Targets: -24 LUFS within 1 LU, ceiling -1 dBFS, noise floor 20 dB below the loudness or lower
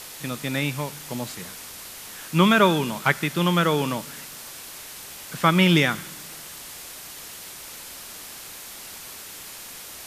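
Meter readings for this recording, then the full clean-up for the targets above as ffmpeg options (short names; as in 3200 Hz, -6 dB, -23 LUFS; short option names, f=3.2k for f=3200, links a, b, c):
noise floor -40 dBFS; noise floor target -42 dBFS; loudness -22.0 LUFS; peak -3.0 dBFS; loudness target -24.0 LUFS
-> -af "afftdn=nr=6:nf=-40"
-af "volume=-2dB"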